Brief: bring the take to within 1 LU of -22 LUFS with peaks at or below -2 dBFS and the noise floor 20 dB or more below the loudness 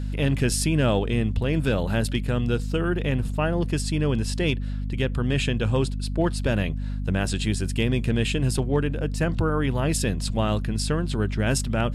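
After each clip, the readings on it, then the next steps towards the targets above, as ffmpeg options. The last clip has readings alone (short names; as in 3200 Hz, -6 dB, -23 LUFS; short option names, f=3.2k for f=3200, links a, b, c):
hum 50 Hz; harmonics up to 250 Hz; hum level -26 dBFS; loudness -25.0 LUFS; peak -10.0 dBFS; loudness target -22.0 LUFS
-> -af "bandreject=f=50:t=h:w=6,bandreject=f=100:t=h:w=6,bandreject=f=150:t=h:w=6,bandreject=f=200:t=h:w=6,bandreject=f=250:t=h:w=6"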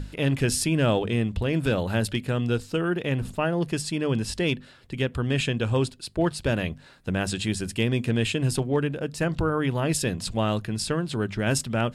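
hum none; loudness -26.0 LUFS; peak -12.0 dBFS; loudness target -22.0 LUFS
-> -af "volume=4dB"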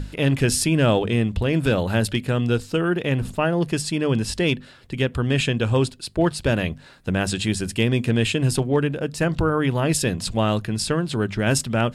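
loudness -22.0 LUFS; peak -8.0 dBFS; noise floor -46 dBFS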